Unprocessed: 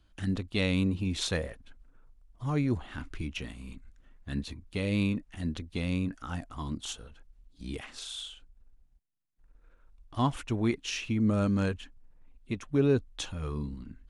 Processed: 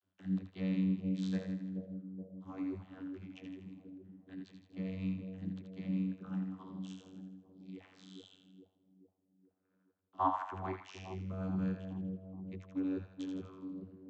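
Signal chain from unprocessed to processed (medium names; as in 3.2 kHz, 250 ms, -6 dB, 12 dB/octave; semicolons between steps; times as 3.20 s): 10.18–10.77 s: high-order bell 1.1 kHz +15 dB; two-band feedback delay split 680 Hz, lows 425 ms, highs 81 ms, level -5.5 dB; dynamic bell 390 Hz, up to -4 dB, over -42 dBFS, Q 1.4; vocoder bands 32, saw 94.2 Hz; trim -8 dB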